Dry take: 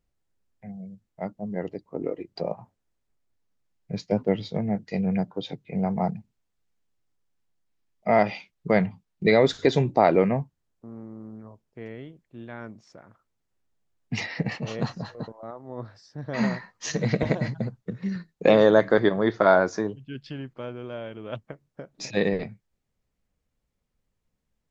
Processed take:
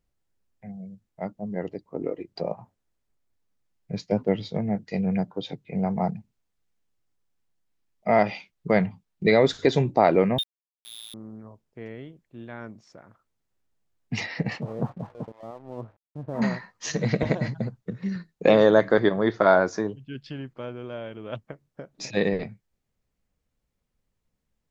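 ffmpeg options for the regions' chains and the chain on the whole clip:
ffmpeg -i in.wav -filter_complex "[0:a]asettb=1/sr,asplit=3[link_01][link_02][link_03];[link_01]atrim=end=10.384[link_04];[link_02]atrim=start=10.38:end=11.14,asetpts=PTS-STARTPTS,afade=type=in:duration=0.004:curve=qsin,afade=type=out:start_time=0.756:duration=0.004:curve=qsin,lowshelf=frequency=72:gain=7.5,lowpass=frequency=3200:width_type=q:width=0.5098,lowpass=frequency=3200:width_type=q:width=0.6013,lowpass=frequency=3200:width_type=q:width=0.9,lowpass=frequency=3200:width_type=q:width=2.563,afreqshift=-3800,aeval=exprs='val(0)*gte(abs(val(0)),0.0188)':channel_layout=same[link_05];[link_03]atrim=start=11.136[link_06];[link_04][link_05]acrossfade=duration=0.004:curve1=hsin:curve2=qsin[link_07];[link_07][link_06]acrossfade=duration=0.004:curve1=qsin:curve2=hsin,asettb=1/sr,asplit=3[link_08][link_09][link_10];[link_08]atrim=end=14.614[link_11];[link_09]atrim=start=14.61:end=16.42,asetpts=PTS-STARTPTS,afade=type=in:duration=0.004:curve=qsin,afade=type=out:start_time=1.806:duration=0.004:curve=qsin,lowpass=frequency=1100:width=0.5412,lowpass=frequency=1100:width=1.3066,aeval=exprs='sgn(val(0))*max(abs(val(0))-0.00188,0)':channel_layout=same[link_12];[link_10]atrim=start=16.416[link_13];[link_11][link_12]acrossfade=duration=0.004:curve1=hsin:curve2=qsin[link_14];[link_14][link_13]acrossfade=duration=0.004:curve1=qsin:curve2=hsin" out.wav

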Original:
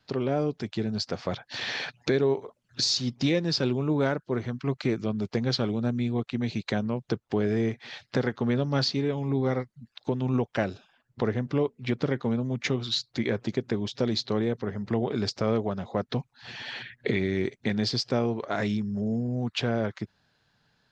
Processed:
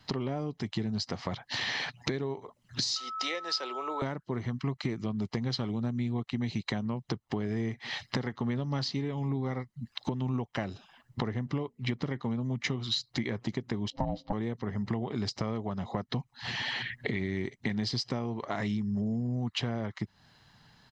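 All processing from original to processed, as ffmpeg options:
ffmpeg -i in.wav -filter_complex "[0:a]asettb=1/sr,asplit=3[link_01][link_02][link_03];[link_01]atrim=end=2.964[link_04];[link_02]atrim=start=2.96:end=4.02,asetpts=PTS-STARTPTS,afade=type=in:duration=0.004:curve=qsin,afade=type=out:start_time=1.056:duration=0.004:curve=qsin,highpass=frequency=480:width=0.5412,highpass=frequency=480:width=1.3066,aeval=exprs='val(0)+0.0158*sin(2*PI*1300*n/s)':channel_layout=same[link_05];[link_03]atrim=start=4.016[link_06];[link_04][link_05]acrossfade=duration=0.004:curve1=hsin:curve2=qsin[link_07];[link_07][link_06]acrossfade=duration=0.004:curve1=qsin:curve2=hsin,asettb=1/sr,asplit=3[link_08][link_09][link_10];[link_08]atrim=end=13.904[link_11];[link_09]atrim=start=13.9:end=14.33,asetpts=PTS-STARTPTS,afade=type=in:duration=0.004:curve=qsin,afade=type=out:start_time=0.426:duration=0.004:curve=qsin,lowpass=frequency=2800:poles=1,tiltshelf=frequency=660:gain=9.5,aeval=exprs='val(0)*sin(2*PI*400*n/s)':channel_layout=same[link_12];[link_10]atrim=start=14.326[link_13];[link_11][link_12]acrossfade=duration=0.004:curve1=hsin:curve2=qsin[link_14];[link_14][link_13]acrossfade=duration=0.004:curve1=qsin:curve2=hsin,acompressor=threshold=-40dB:ratio=4,aecho=1:1:1:0.4,volume=8dB" out.wav

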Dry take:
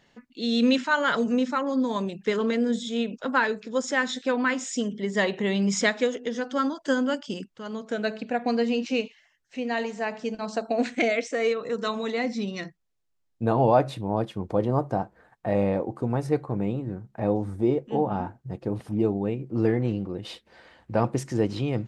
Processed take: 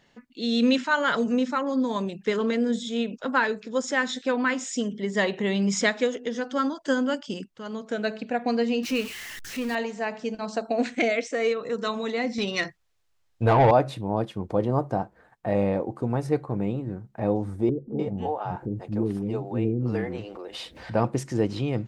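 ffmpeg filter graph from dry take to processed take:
ffmpeg -i in.wav -filter_complex "[0:a]asettb=1/sr,asplit=3[link_01][link_02][link_03];[link_01]atrim=end=8.834[link_04];[link_02]atrim=start=8.83:end=9.75,asetpts=PTS-STARTPTS,afade=type=in:duration=0.004:curve=qsin,afade=type=out:start_time=0.916:duration=0.004:curve=qsin,aeval=exprs='val(0)+0.5*0.0237*sgn(val(0))':channel_layout=same,equalizer=frequency=690:width_type=o:width=0.94:gain=-7.5[link_05];[link_03]atrim=start=9.746[link_06];[link_04][link_05]acrossfade=duration=0.004:curve1=hsin:curve2=qsin[link_07];[link_07][link_06]acrossfade=duration=0.004:curve1=qsin:curve2=hsin,asettb=1/sr,asplit=3[link_08][link_09][link_10];[link_08]atrim=end=12.384[link_11];[link_09]atrim=start=12.38:end=13.71,asetpts=PTS-STARTPTS,afade=type=in:duration=0.004:curve=qsin,afade=type=out:start_time=1.326:duration=0.004:curve=qsin,lowshelf=frequency=130:width_type=q:width=1.5:gain=11,asplit=2[link_12][link_13];[link_13]highpass=frequency=720:poles=1,volume=17dB,asoftclip=type=tanh:threshold=-9.5dB[link_14];[link_12][link_14]amix=inputs=2:normalize=0,lowpass=frequency=5800:poles=1,volume=-6dB[link_15];[link_10]atrim=start=13.706[link_16];[link_11][link_15]acrossfade=duration=0.004:curve1=hsin:curve2=qsin[link_17];[link_17][link_16]acrossfade=duration=0.004:curve1=qsin:curve2=hsin,asettb=1/sr,asplit=3[link_18][link_19][link_20];[link_18]atrim=end=17.694[link_21];[link_19]atrim=start=17.69:end=20.94,asetpts=PTS-STARTPTS,afade=type=in:duration=0.004:curve=qsin,afade=type=out:start_time=3.246:duration=0.004:curve=qsin,acrossover=split=420[link_22][link_23];[link_23]adelay=300[link_24];[link_22][link_24]amix=inputs=2:normalize=0,atrim=end_sample=143325,acompressor=mode=upward:threshold=-30dB:ratio=2.5:attack=3.2:release=140:knee=2.83:detection=peak[link_25];[link_20]atrim=start=20.936[link_26];[link_21][link_25]acrossfade=duration=0.004:curve1=hsin:curve2=qsin[link_27];[link_27][link_26]acrossfade=duration=0.004:curve1=qsin:curve2=hsin" out.wav

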